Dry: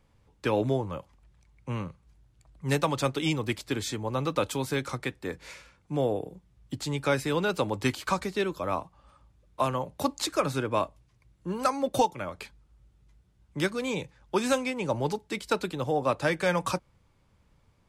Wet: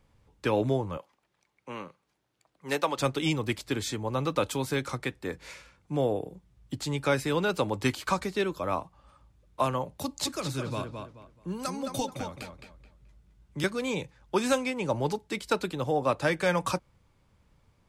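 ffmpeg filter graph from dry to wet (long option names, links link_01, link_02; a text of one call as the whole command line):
ffmpeg -i in.wav -filter_complex "[0:a]asettb=1/sr,asplit=3[link_01][link_02][link_03];[link_01]atrim=end=0.974[link_04];[link_02]atrim=start=0.97:end=2.99,asetpts=PTS-STARTPTS,afade=type=in:duration=0.004:curve=qsin,afade=type=out:start_time=2.016:duration=0.004:curve=qsin,highpass=340,equalizer=frequency=8400:width_type=o:width=0.85:gain=-4.5[link_05];[link_03]atrim=start=2.986[link_06];[link_04][link_05]acrossfade=duration=0.004:curve1=hsin:curve2=qsin[link_07];[link_07][link_06]acrossfade=duration=0.004:curve1=qsin:curve2=hsin,asettb=1/sr,asplit=3[link_08][link_09][link_10];[link_08]atrim=end=9.984[link_11];[link_09]atrim=start=9.98:end=13.64,asetpts=PTS-STARTPTS,afade=type=in:duration=0.004:curve=qsin,afade=type=out:start_time=3.656:duration=0.004:curve=qsin,acrossover=split=250|3000[link_12][link_13][link_14];[link_13]acompressor=threshold=-50dB:ratio=1.5:attack=3.2:release=140:knee=2.83:detection=peak[link_15];[link_12][link_15][link_14]amix=inputs=3:normalize=0,asplit=2[link_16][link_17];[link_17]adelay=215,lowpass=frequency=3800:poles=1,volume=-5.5dB,asplit=2[link_18][link_19];[link_19]adelay=215,lowpass=frequency=3800:poles=1,volume=0.28,asplit=2[link_20][link_21];[link_21]adelay=215,lowpass=frequency=3800:poles=1,volume=0.28,asplit=2[link_22][link_23];[link_23]adelay=215,lowpass=frequency=3800:poles=1,volume=0.28[link_24];[link_16][link_18][link_20][link_22][link_24]amix=inputs=5:normalize=0,atrim=end_sample=161406[link_25];[link_10]atrim=start=13.636[link_26];[link_11][link_25]acrossfade=duration=0.004:curve1=hsin:curve2=qsin[link_27];[link_27][link_26]acrossfade=duration=0.004:curve1=qsin:curve2=hsin" out.wav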